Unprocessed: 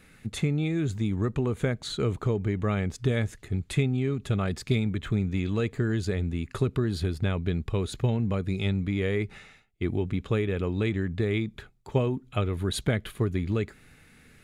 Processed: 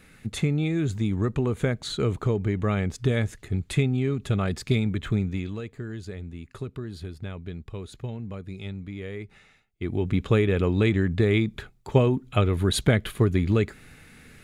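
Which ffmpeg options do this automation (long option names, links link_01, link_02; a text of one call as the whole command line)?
ffmpeg -i in.wav -af "volume=16dB,afade=type=out:start_time=5.15:duration=0.47:silence=0.298538,afade=type=in:start_time=9.31:duration=0.58:silence=0.446684,afade=type=in:start_time=9.89:duration=0.28:silence=0.446684" out.wav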